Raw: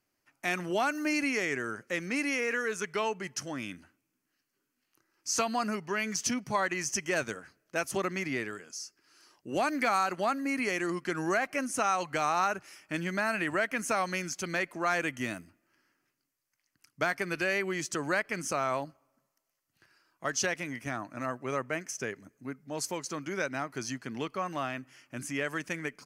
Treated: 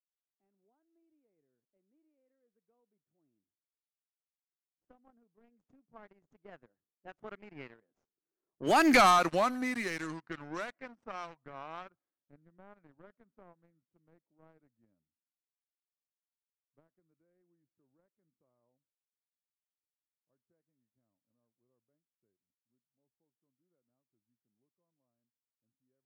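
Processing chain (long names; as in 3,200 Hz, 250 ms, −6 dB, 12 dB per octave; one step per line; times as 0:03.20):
source passing by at 0:08.97, 31 m/s, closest 4.3 metres
leveller curve on the samples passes 3
low-pass that shuts in the quiet parts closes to 480 Hz, open at −32.5 dBFS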